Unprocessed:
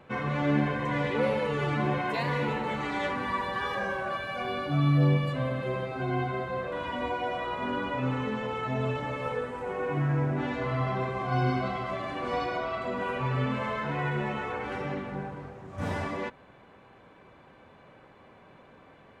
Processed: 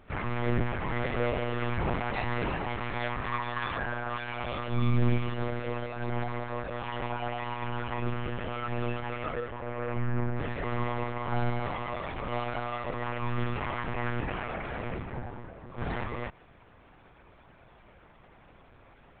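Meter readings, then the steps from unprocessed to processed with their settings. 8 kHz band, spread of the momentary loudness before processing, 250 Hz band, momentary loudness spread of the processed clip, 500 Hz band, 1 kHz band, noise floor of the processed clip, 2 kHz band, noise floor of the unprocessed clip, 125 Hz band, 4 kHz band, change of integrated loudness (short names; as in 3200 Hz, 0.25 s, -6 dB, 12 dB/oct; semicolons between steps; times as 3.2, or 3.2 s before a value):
n/a, 7 LU, -4.0 dB, 6 LU, -3.5 dB, -2.5 dB, -57 dBFS, -2.0 dB, -55 dBFS, -3.0 dB, -2.5 dB, -3.0 dB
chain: bell 500 Hz -2.5 dB 2.5 oct; monotone LPC vocoder at 8 kHz 120 Hz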